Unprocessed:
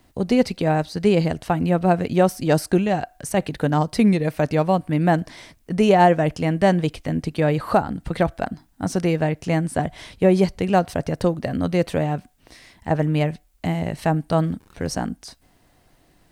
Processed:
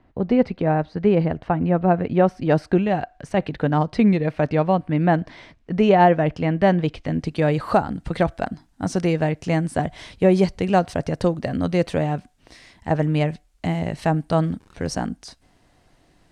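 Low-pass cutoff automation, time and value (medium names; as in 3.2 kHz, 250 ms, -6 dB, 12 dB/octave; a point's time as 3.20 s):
1.91 s 1.9 kHz
2.97 s 3.3 kHz
6.78 s 3.3 kHz
7.46 s 8.4 kHz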